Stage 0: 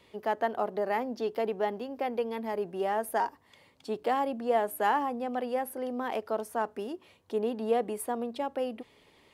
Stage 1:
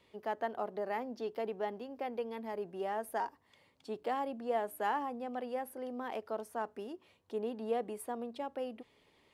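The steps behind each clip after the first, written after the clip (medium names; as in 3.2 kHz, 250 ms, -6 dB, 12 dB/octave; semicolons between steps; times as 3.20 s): treble shelf 11 kHz -4.5 dB; trim -7 dB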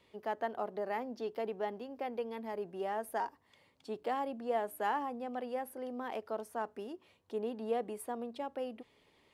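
no audible change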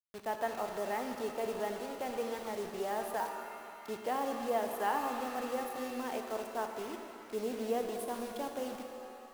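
word length cut 8-bit, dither none; pitch-shifted reverb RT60 2.7 s, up +7 st, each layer -8 dB, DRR 4.5 dB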